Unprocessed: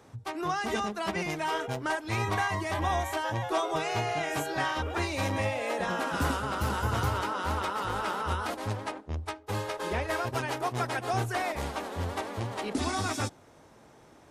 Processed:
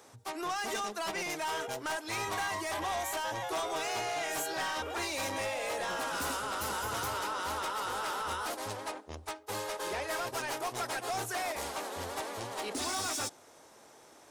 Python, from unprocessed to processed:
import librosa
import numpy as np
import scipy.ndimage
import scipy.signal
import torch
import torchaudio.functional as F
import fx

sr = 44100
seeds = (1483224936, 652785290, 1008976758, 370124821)

y = fx.bass_treble(x, sr, bass_db=-14, treble_db=8)
y = 10.0 ** (-30.0 / 20.0) * np.tanh(y / 10.0 ** (-30.0 / 20.0))